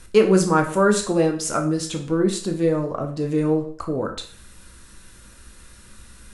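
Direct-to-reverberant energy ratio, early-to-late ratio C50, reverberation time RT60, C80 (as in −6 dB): 3.5 dB, 9.5 dB, 0.50 s, 14.0 dB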